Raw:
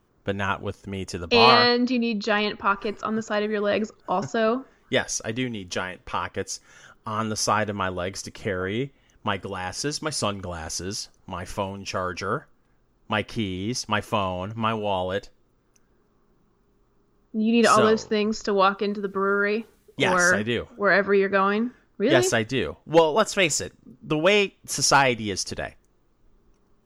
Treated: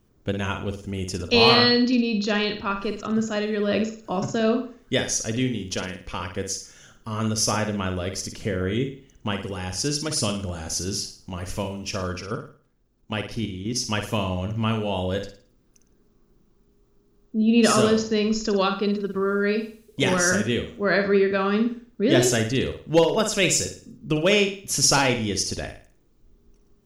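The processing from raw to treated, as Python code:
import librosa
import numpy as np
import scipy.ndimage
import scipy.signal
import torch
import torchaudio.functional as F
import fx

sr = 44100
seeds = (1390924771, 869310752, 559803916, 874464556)

p1 = fx.peak_eq(x, sr, hz=1100.0, db=-10.5, octaves=2.2)
p2 = fx.level_steps(p1, sr, step_db=10, at=(12.18, 13.76))
p3 = p2 + fx.room_flutter(p2, sr, wall_m=9.3, rt60_s=0.43, dry=0)
y = p3 * librosa.db_to_amplitude(4.0)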